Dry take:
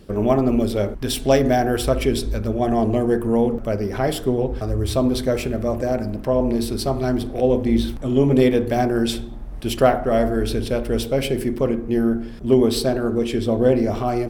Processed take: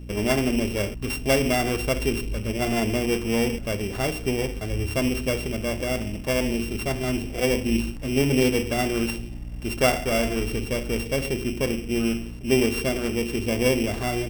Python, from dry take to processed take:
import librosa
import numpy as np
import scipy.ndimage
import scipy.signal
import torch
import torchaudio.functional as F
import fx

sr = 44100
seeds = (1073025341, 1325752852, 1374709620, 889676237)

y = np.r_[np.sort(x[:len(x) // 16 * 16].reshape(-1, 16), axis=1).ravel(), x[len(x) // 16 * 16:]]
y = fx.add_hum(y, sr, base_hz=60, snr_db=13)
y = F.gain(torch.from_numpy(y), -5.0).numpy()